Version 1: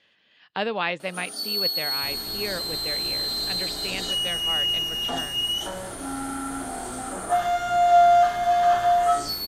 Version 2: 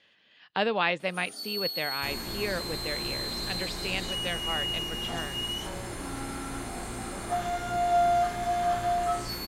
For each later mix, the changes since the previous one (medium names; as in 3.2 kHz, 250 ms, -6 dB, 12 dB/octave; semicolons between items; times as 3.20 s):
first sound -8.0 dB; second sound +4.0 dB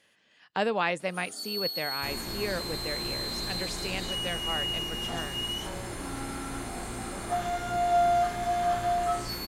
speech: remove resonant low-pass 3.7 kHz, resonance Q 1.8